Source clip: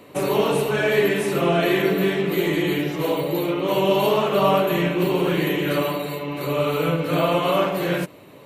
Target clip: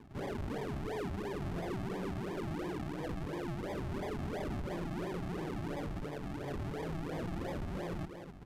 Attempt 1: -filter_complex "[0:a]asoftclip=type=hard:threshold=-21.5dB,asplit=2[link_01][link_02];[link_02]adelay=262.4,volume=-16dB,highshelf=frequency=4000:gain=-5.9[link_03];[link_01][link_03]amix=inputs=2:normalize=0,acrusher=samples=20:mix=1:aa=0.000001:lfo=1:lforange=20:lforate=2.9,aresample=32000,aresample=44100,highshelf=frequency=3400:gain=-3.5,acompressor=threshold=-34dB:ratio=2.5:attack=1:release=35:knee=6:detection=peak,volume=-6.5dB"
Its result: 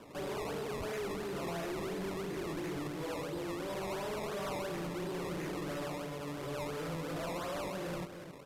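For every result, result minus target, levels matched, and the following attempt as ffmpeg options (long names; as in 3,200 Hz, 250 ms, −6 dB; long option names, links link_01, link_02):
sample-and-hold swept by an LFO: distortion −15 dB; 8,000 Hz band +8.0 dB
-filter_complex "[0:a]asoftclip=type=hard:threshold=-21.5dB,asplit=2[link_01][link_02];[link_02]adelay=262.4,volume=-16dB,highshelf=frequency=4000:gain=-5.9[link_03];[link_01][link_03]amix=inputs=2:normalize=0,acrusher=samples=62:mix=1:aa=0.000001:lfo=1:lforange=62:lforate=2.9,aresample=32000,aresample=44100,highshelf=frequency=3400:gain=-3.5,acompressor=threshold=-34dB:ratio=2.5:attack=1:release=35:knee=6:detection=peak,volume=-6.5dB"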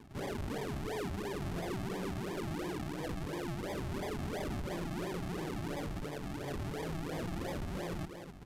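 8,000 Hz band +6.5 dB
-filter_complex "[0:a]asoftclip=type=hard:threshold=-21.5dB,asplit=2[link_01][link_02];[link_02]adelay=262.4,volume=-16dB,highshelf=frequency=4000:gain=-5.9[link_03];[link_01][link_03]amix=inputs=2:normalize=0,acrusher=samples=62:mix=1:aa=0.000001:lfo=1:lforange=62:lforate=2.9,aresample=32000,aresample=44100,highshelf=frequency=3400:gain=-12,acompressor=threshold=-34dB:ratio=2.5:attack=1:release=35:knee=6:detection=peak,volume=-6.5dB"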